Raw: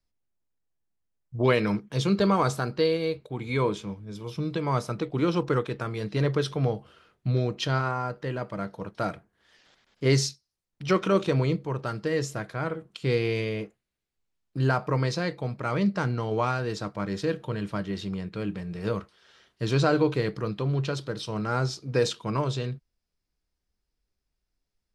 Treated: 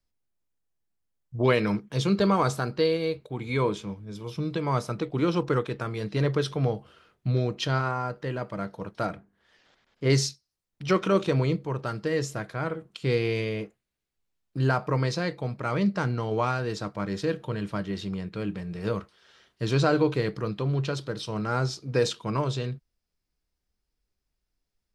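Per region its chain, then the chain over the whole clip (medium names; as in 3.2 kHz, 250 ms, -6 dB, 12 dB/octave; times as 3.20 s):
9.06–10.10 s: treble shelf 3.4 kHz -7 dB + hum notches 50/100/150/200/250/300/350/400 Hz
whole clip: none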